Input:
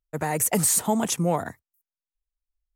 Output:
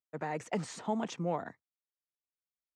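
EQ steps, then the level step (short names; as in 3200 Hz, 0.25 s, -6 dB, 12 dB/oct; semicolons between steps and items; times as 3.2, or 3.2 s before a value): BPF 170–7200 Hz; air absorption 150 m; -8.5 dB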